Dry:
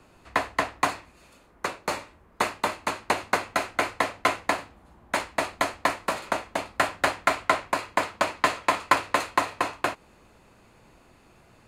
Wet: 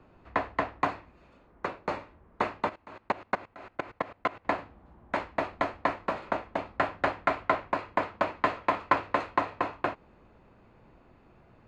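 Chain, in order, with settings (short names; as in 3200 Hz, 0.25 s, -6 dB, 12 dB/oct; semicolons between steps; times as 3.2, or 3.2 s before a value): 2.69–4.45 level quantiser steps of 21 dB; tape spacing loss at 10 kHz 33 dB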